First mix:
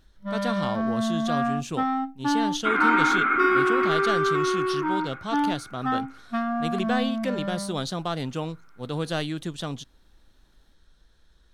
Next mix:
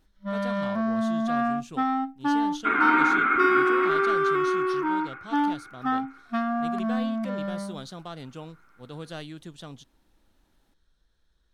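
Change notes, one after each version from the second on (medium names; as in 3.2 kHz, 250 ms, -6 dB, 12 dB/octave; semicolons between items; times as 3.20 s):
speech -10.0 dB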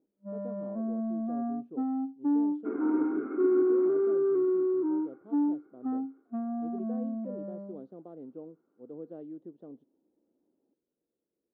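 master: add Butterworth band-pass 360 Hz, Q 1.3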